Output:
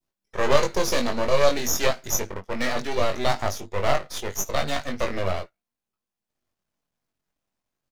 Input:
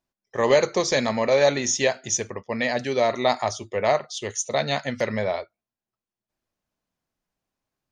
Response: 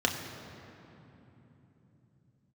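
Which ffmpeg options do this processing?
-filter_complex "[0:a]aeval=exprs='max(val(0),0)':c=same,adynamicequalizer=threshold=0.0141:dfrequency=1500:dqfactor=0.82:tfrequency=1500:tqfactor=0.82:attack=5:release=100:ratio=0.375:range=2:mode=cutabove:tftype=bell,asplit=2[a][b];[b]adelay=21,volume=-4.5dB[c];[a][c]amix=inputs=2:normalize=0,volume=2.5dB"

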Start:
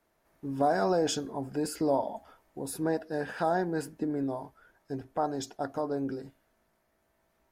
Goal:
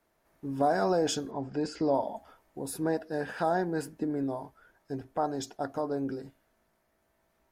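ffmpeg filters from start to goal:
-filter_complex "[0:a]asettb=1/sr,asplit=3[a][b][c];[a]atrim=end=1.314[d];[b]atrim=start=1.31:end=1.95,asetpts=PTS-STARTPTS,afade=t=in:d=0.004:c=qsin,afade=t=out:st=0.636:d=0.004:c=qsin,lowpass=f=6.2k:w=0.5412,lowpass=f=6.2k:w=1.3066[e];[c]atrim=start=1.946[f];[d][e]acrossfade=d=0.004:c1=hsin:c2=qsin[g];[g][f]acrossfade=d=0.004:c1=qsin:c2=hsin"

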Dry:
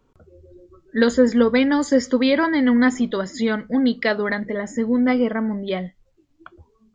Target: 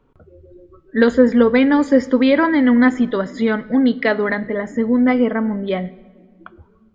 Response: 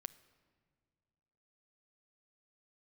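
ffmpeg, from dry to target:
-filter_complex "[0:a]asplit=2[a][b];[1:a]atrim=start_sample=2205,lowpass=3.4k[c];[b][c]afir=irnorm=-1:irlink=0,volume=11.5dB[d];[a][d]amix=inputs=2:normalize=0,volume=-6.5dB"

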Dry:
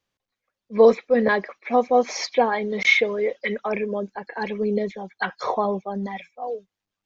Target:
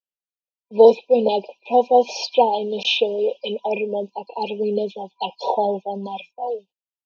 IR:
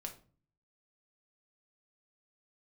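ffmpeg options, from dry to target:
-af "agate=range=-26dB:threshold=-47dB:ratio=16:detection=peak,afftfilt=real='re*(1-between(b*sr/4096,980,2400))':imag='im*(1-between(b*sr/4096,980,2400))':win_size=4096:overlap=0.75,highpass=270,equalizer=f=300:t=q:w=4:g=-7,equalizer=f=1.1k:t=q:w=4:g=5,equalizer=f=2.9k:t=q:w=4:g=7,lowpass=f=5.2k:w=0.5412,lowpass=f=5.2k:w=1.3066,volume=4dB"

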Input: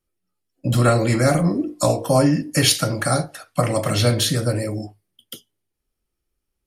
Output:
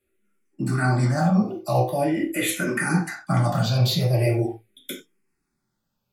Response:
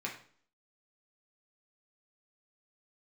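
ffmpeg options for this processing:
-filter_complex "[0:a]areverse,acompressor=threshold=-26dB:ratio=10,areverse,asetrate=48000,aresample=44100[a];[1:a]atrim=start_sample=2205,atrim=end_sample=4410[b];[a][b]afir=irnorm=-1:irlink=0,asplit=2[c][d];[d]afreqshift=-0.43[e];[c][e]amix=inputs=2:normalize=1,volume=8.5dB"

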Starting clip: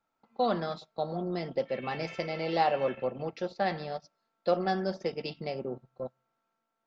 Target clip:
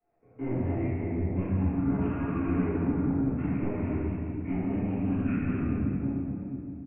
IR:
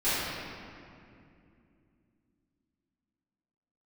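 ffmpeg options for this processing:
-filter_complex "[0:a]highshelf=f=3.2k:g=-3,acrossover=split=390[a][b];[b]acompressor=threshold=-39dB:ratio=16[c];[a][c]amix=inputs=2:normalize=0,flanger=delay=19:depth=7.4:speed=2.3,aresample=11025,asoftclip=type=tanh:threshold=-37dB,aresample=44100,asetrate=23361,aresample=44100,atempo=1.88775[d];[1:a]atrim=start_sample=2205,asetrate=39690,aresample=44100[e];[d][e]afir=irnorm=-1:irlink=0"

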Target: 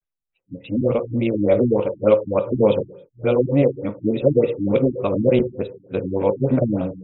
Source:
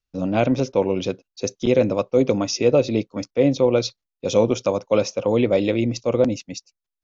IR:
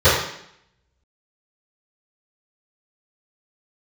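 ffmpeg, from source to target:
-filter_complex "[0:a]areverse,asplit=2[a][b];[1:a]atrim=start_sample=2205,afade=t=out:st=0.32:d=0.01,atrim=end_sample=14553[c];[b][c]afir=irnorm=-1:irlink=0,volume=-33.5dB[d];[a][d]amix=inputs=2:normalize=0,afftfilt=real='re*lt(b*sr/1024,320*pow(4000/320,0.5+0.5*sin(2*PI*3.4*pts/sr)))':imag='im*lt(b*sr/1024,320*pow(4000/320,0.5+0.5*sin(2*PI*3.4*pts/sr)))':win_size=1024:overlap=0.75,volume=1dB"

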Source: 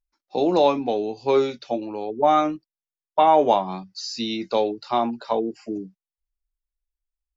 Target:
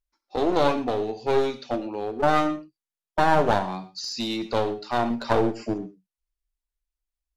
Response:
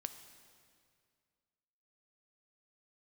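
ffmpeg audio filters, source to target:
-filter_complex "[0:a]asettb=1/sr,asplit=3[a][b][c];[a]atrim=end=5.104[d];[b]atrim=start=5.1:end=5.74,asetpts=PTS-STARTPTS,afade=t=in:d=0.004:c=qsin,afade=t=out:st=0.636:d=0.004:c=qsin,acontrast=48[e];[c]atrim=start=5.736[f];[d][e]acrossfade=d=0.004:c1=hsin:c2=qsin[g];[g][f]acrossfade=d=0.004:c1=qsin:c2=hsin,aeval=exprs='clip(val(0),-1,0.0501)':c=same[h];[1:a]atrim=start_sample=2205,atrim=end_sample=3528,asetrate=26460,aresample=44100[i];[h][i]afir=irnorm=-1:irlink=0"

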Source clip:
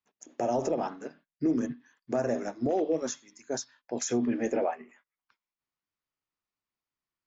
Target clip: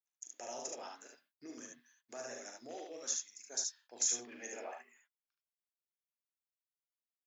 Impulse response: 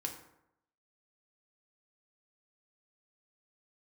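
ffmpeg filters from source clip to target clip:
-filter_complex "[0:a]agate=range=-17dB:threshold=-58dB:ratio=16:detection=peak,aderivative,asplit=2[a][b];[b]aecho=0:1:40|73:0.422|0.668[c];[a][c]amix=inputs=2:normalize=0,volume=2dB"

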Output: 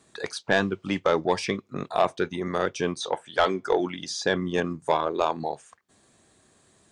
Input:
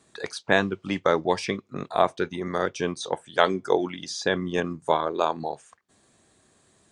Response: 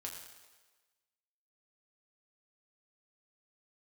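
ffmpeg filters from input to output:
-filter_complex "[0:a]asoftclip=type=tanh:threshold=-11dB,asettb=1/sr,asplit=3[a][b][c];[a]atrim=end=3.004[d];[b]atrim=start=3:end=3.8,asetpts=PTS-STARTPTS,afade=t=in:d=0.004:c=qsin,afade=t=out:st=0.796:d=0.004:c=qsin,asplit=2[e][f];[f]highpass=f=720:p=1,volume=8dB,asoftclip=type=tanh:threshold=-11dB[g];[e][g]amix=inputs=2:normalize=0,lowpass=f=3.5k:p=1,volume=-6dB[h];[c]atrim=start=3.796[i];[d][h]acrossfade=d=0.004:c1=hsin:c2=qsin[j];[j][i]acrossfade=d=0.004:c1=qsin:c2=hsin,volume=1dB"

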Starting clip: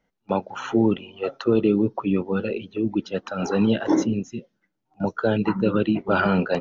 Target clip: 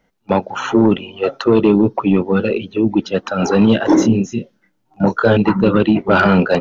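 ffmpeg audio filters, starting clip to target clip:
-filter_complex "[0:a]asplit=2[a][b];[b]aeval=exprs='0.422*sin(PI/2*2*val(0)/0.422)':c=same,volume=-8dB[c];[a][c]amix=inputs=2:normalize=0,asettb=1/sr,asplit=3[d][e][f];[d]atrim=end=4.004[g];[e]atrim=start=4:end=5.37,asetpts=PTS-STARTPTS,afade=t=in:d=0.004:c=qsin,afade=t=out:st=1.366:d=0.004:c=qsin,asplit=2[h][i];[i]adelay=26,volume=-4.5dB[j];[h][j]amix=inputs=2:normalize=0,atrim=end_sample=60417[k];[f]atrim=start=5.366[l];[g][k]acrossfade=d=0.004:c1=hsin:c2=qsin[m];[m][l]acrossfade=d=0.004:c1=qsin:c2=hsin,volume=2.5dB"

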